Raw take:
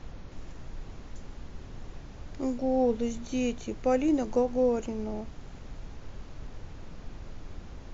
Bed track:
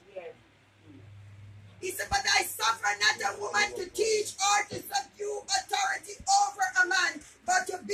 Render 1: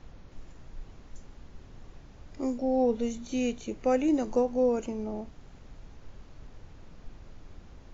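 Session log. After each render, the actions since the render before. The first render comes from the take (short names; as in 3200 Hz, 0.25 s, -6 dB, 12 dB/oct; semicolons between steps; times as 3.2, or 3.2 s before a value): noise print and reduce 6 dB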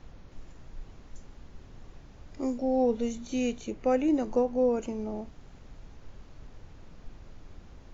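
3.71–4.82 LPF 4000 Hz 6 dB/oct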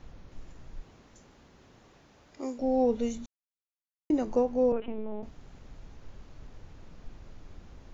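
0.8–2.58 HPF 150 Hz -> 480 Hz 6 dB/oct; 3.26–4.1 mute; 4.72–5.23 LPC vocoder at 8 kHz pitch kept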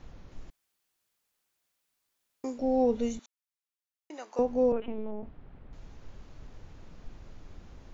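0.5–2.44 room tone; 3.19–4.39 HPF 970 Hz; 5.11–5.73 air absorption 460 m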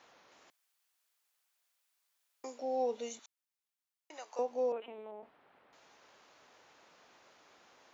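HPF 680 Hz 12 dB/oct; dynamic EQ 1500 Hz, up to -6 dB, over -54 dBFS, Q 1.2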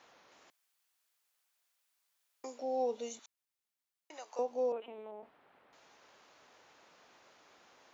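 dynamic EQ 1900 Hz, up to -4 dB, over -55 dBFS, Q 1.3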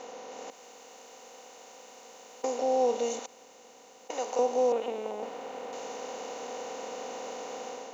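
per-bin compression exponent 0.4; AGC gain up to 5.5 dB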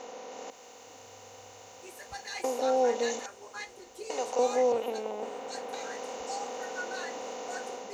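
add bed track -15 dB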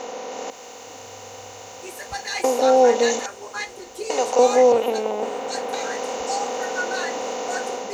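gain +11 dB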